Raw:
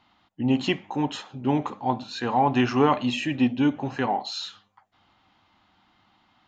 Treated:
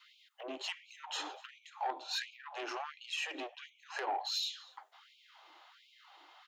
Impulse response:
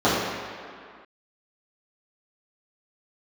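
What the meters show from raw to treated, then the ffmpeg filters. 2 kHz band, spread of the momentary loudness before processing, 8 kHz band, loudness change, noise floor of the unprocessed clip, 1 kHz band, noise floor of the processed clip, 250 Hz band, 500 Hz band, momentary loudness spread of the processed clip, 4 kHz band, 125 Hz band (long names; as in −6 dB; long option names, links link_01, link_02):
−9.0 dB, 9 LU, can't be measured, −14.5 dB, −65 dBFS, −14.0 dB, −67 dBFS, −30.5 dB, −18.0 dB, 23 LU, −5.0 dB, below −40 dB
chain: -filter_complex "[0:a]highshelf=frequency=5200:gain=4.5,asplit=2[link_01][link_02];[link_02]adelay=244.9,volume=-27dB,highshelf=frequency=4000:gain=-5.51[link_03];[link_01][link_03]amix=inputs=2:normalize=0,asplit=2[link_04][link_05];[1:a]atrim=start_sample=2205,afade=type=out:start_time=0.15:duration=0.01,atrim=end_sample=7056,asetrate=48510,aresample=44100[link_06];[link_05][link_06]afir=irnorm=-1:irlink=0,volume=-37dB[link_07];[link_04][link_07]amix=inputs=2:normalize=0,adynamicequalizer=threshold=0.0224:dfrequency=860:dqfactor=2.9:tfrequency=860:tqfactor=2.9:attack=5:release=100:ratio=0.375:range=2:mode=boostabove:tftype=bell,acrossover=split=170[link_08][link_09];[link_09]acompressor=threshold=-34dB:ratio=16[link_10];[link_08][link_10]amix=inputs=2:normalize=0,asoftclip=type=tanh:threshold=-30.5dB,afftfilt=real='re*gte(b*sr/1024,280*pow(2200/280,0.5+0.5*sin(2*PI*1.4*pts/sr)))':imag='im*gte(b*sr/1024,280*pow(2200/280,0.5+0.5*sin(2*PI*1.4*pts/sr)))':win_size=1024:overlap=0.75,volume=4dB"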